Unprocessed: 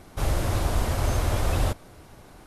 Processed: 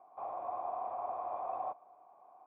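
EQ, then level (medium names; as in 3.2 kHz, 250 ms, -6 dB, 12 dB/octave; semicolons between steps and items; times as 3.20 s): cascade formant filter a; high-pass 340 Hz 12 dB/octave; +3.0 dB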